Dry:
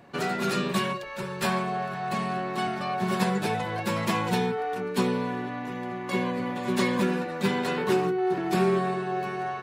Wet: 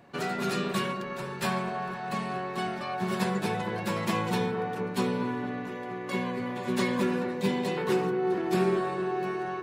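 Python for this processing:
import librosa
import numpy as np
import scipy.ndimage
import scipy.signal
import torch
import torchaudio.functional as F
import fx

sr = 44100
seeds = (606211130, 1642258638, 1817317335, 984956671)

y = fx.peak_eq(x, sr, hz=1400.0, db=-12.5, octaves=0.45, at=(7.33, 7.77))
y = fx.echo_wet_lowpass(y, sr, ms=226, feedback_pct=70, hz=1400.0, wet_db=-9.0)
y = y * 10.0 ** (-3.0 / 20.0)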